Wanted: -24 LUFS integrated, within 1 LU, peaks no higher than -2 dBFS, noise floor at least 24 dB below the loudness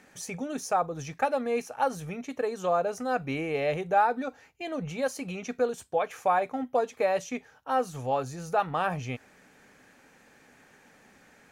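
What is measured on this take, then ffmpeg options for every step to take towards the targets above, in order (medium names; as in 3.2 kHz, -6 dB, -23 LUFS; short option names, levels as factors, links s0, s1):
loudness -30.0 LUFS; peak level -12.0 dBFS; loudness target -24.0 LUFS
-> -af "volume=2"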